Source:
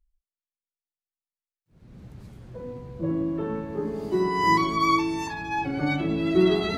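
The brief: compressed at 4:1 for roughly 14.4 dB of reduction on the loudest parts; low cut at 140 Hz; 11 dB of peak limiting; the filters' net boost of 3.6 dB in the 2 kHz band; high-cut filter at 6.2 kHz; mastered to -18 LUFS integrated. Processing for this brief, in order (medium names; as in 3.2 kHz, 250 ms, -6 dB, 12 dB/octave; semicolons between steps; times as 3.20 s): high-pass 140 Hz; low-pass 6.2 kHz; peaking EQ 2 kHz +4 dB; compression 4:1, threshold -33 dBFS; trim +23.5 dB; peak limiter -10 dBFS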